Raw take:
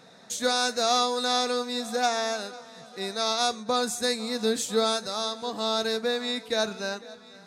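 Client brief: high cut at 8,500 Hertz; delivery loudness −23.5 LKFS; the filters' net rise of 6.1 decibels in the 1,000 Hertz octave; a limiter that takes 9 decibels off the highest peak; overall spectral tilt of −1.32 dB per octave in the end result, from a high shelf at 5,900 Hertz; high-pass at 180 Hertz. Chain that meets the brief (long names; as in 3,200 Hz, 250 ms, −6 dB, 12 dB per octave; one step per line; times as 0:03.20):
high-pass filter 180 Hz
low-pass filter 8,500 Hz
parametric band 1,000 Hz +9 dB
high-shelf EQ 5,900 Hz +3.5 dB
level +3.5 dB
brickwall limiter −12 dBFS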